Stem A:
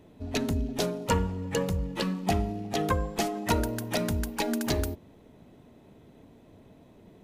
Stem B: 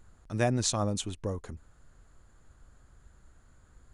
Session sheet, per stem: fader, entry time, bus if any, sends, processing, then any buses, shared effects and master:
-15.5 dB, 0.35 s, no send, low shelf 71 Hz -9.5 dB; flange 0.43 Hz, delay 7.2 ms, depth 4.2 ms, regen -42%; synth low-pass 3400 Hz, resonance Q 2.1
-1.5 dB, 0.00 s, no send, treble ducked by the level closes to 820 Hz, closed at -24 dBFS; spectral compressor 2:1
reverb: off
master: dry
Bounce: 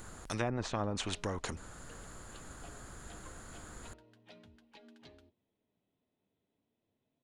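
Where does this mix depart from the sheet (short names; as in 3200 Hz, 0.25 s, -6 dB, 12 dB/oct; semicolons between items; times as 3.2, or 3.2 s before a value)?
stem A -15.5 dB -> -25.5 dB; master: extra high shelf 10000 Hz +11 dB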